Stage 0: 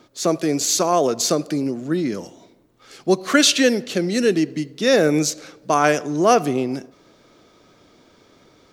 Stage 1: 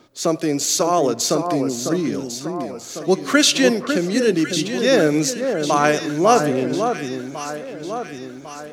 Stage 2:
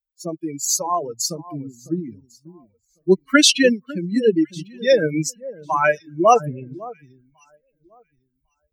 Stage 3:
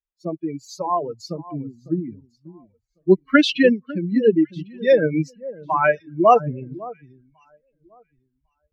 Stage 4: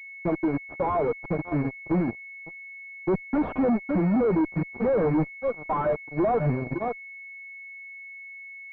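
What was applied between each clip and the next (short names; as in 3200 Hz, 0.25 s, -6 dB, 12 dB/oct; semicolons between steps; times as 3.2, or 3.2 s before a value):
echo with dull and thin repeats by turns 0.55 s, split 1600 Hz, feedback 70%, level -6 dB
per-bin expansion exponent 3; gain +5.5 dB
air absorption 350 m; gain +1.5 dB
fuzz box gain 30 dB, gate -35 dBFS; pulse-width modulation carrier 2200 Hz; gain -6.5 dB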